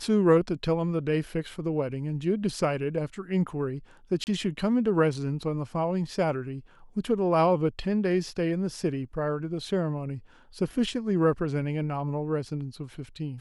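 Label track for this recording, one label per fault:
4.240000	4.270000	dropout 29 ms

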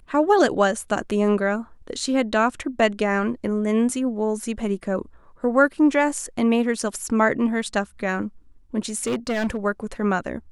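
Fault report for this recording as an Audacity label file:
8.960000	9.570000	clipped -19.5 dBFS

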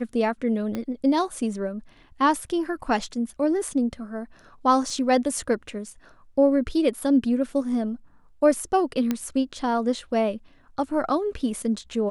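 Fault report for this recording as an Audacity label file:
0.750000	0.750000	pop -17 dBFS
4.900000	4.900000	dropout 2.1 ms
9.110000	9.110000	pop -11 dBFS

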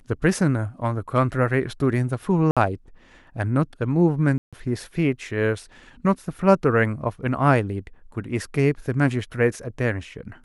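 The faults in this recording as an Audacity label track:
2.510000	2.570000	dropout 56 ms
4.380000	4.530000	dropout 146 ms

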